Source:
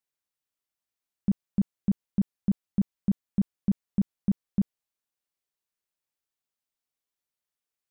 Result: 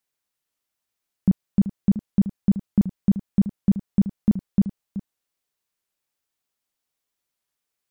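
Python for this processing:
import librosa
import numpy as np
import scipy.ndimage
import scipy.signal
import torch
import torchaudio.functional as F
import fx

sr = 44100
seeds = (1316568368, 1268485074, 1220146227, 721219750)

y = x + 10.0 ** (-13.0 / 20.0) * np.pad(x, (int(378 * sr / 1000.0), 0))[:len(x)]
y = fx.record_warp(y, sr, rpm=78.0, depth_cents=100.0)
y = F.gain(torch.from_numpy(y), 6.5).numpy()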